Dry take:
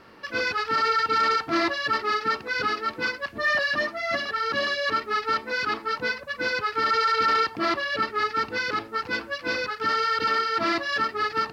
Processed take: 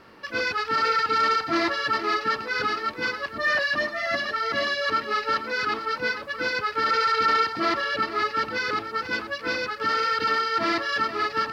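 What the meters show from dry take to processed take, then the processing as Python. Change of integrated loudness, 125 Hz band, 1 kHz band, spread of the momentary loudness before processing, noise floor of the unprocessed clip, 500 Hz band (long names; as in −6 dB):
+0.5 dB, +0.5 dB, +0.5 dB, 6 LU, −43 dBFS, +0.5 dB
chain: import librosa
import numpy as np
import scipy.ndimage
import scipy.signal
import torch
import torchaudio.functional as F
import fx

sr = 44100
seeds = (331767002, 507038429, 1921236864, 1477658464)

y = x + 10.0 ** (-11.0 / 20.0) * np.pad(x, (int(480 * sr / 1000.0), 0))[:len(x)]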